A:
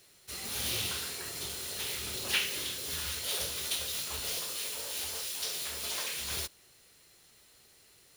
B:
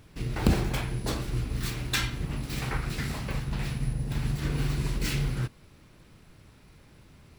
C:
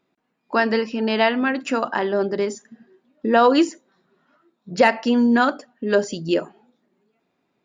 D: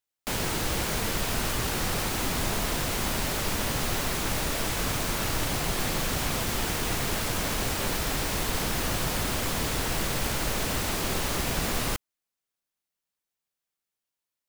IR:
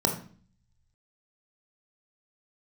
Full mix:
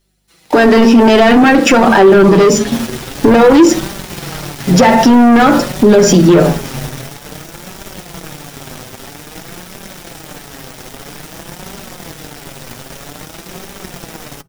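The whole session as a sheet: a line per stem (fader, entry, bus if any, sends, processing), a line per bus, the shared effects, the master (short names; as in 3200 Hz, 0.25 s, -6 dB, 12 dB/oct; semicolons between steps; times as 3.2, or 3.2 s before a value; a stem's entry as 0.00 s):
+0.5 dB, 0.00 s, no send, comb 6 ms, depth 86%; hum 50 Hz, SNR 19 dB; slew limiter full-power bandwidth 56 Hz
-5.0 dB, 1.60 s, send -19.5 dB, dry
+1.5 dB, 0.00 s, send -11.5 dB, limiter -14.5 dBFS, peak gain reduction 10.5 dB; AGC gain up to 11 dB; HPF 47 Hz 24 dB/oct
-6.0 dB, 2.45 s, send -17 dB, dry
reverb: on, RT60 0.45 s, pre-delay 20 ms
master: sample leveller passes 3; flange 0.51 Hz, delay 5 ms, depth 3 ms, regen +29%; limiter -1 dBFS, peak gain reduction 9 dB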